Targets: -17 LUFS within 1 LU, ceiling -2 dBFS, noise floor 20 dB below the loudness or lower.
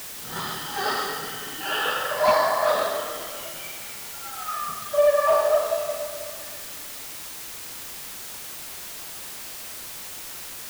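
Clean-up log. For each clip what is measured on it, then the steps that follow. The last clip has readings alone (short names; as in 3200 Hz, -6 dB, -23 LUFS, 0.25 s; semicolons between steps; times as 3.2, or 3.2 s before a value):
clipped 0.2%; flat tops at -12.5 dBFS; noise floor -38 dBFS; noise floor target -47 dBFS; loudness -26.5 LUFS; peak -12.5 dBFS; loudness target -17.0 LUFS
-> clip repair -12.5 dBFS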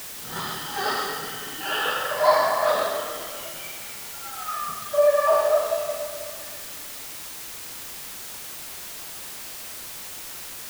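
clipped 0.0%; noise floor -38 dBFS; noise floor target -47 dBFS
-> denoiser 9 dB, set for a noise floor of -38 dBFS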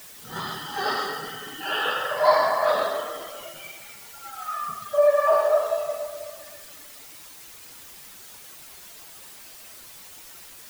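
noise floor -45 dBFS; loudness -24.5 LUFS; peak -4.5 dBFS; loudness target -17.0 LUFS
-> gain +7.5 dB; limiter -2 dBFS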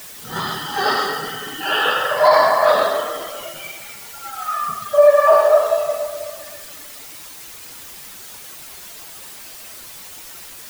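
loudness -17.0 LUFS; peak -2.0 dBFS; noise floor -38 dBFS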